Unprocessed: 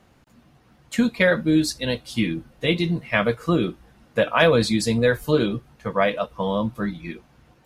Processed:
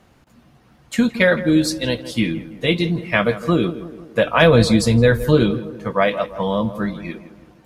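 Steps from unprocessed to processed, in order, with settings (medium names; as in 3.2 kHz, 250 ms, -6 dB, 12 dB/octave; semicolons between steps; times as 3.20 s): 4.25–5.51 s: bass shelf 140 Hz +11.5 dB; on a send: tape echo 166 ms, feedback 59%, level -12 dB, low-pass 1.4 kHz; on the sum: trim +3 dB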